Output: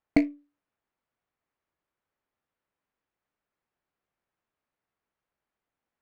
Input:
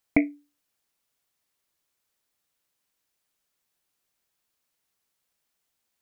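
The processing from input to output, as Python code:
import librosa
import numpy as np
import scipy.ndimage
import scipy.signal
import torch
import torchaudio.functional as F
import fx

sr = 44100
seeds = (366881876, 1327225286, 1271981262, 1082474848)

y = scipy.signal.sosfilt(scipy.signal.butter(2, 1900.0, 'lowpass', fs=sr, output='sos'), x)
y = fx.running_max(y, sr, window=5)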